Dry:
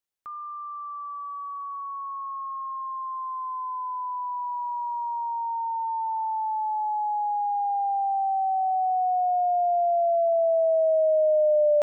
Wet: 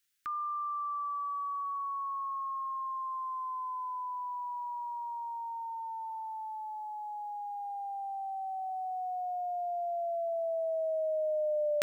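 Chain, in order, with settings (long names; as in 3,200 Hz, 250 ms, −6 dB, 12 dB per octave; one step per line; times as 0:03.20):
drawn EQ curve 370 Hz 0 dB, 550 Hz −12 dB, 850 Hz −16 dB, 1,500 Hz +9 dB
level +2.5 dB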